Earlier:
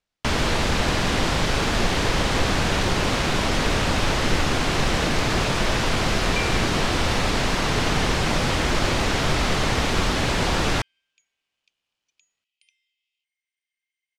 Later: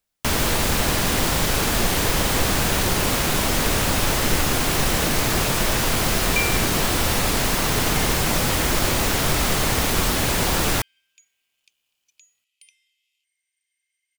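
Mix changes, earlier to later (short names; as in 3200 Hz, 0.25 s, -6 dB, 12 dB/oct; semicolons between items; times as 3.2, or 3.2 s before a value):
second sound +6.0 dB; master: remove LPF 5100 Hz 12 dB/oct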